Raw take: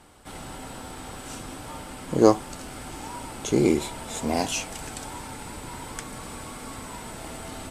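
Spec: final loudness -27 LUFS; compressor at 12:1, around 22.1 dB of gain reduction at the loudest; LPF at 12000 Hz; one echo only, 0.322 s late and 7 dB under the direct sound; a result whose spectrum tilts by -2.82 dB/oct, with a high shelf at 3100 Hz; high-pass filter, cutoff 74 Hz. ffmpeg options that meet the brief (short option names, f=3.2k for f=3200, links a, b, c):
-af "highpass=74,lowpass=12k,highshelf=f=3.1k:g=5,acompressor=threshold=-32dB:ratio=12,aecho=1:1:322:0.447,volume=9dB"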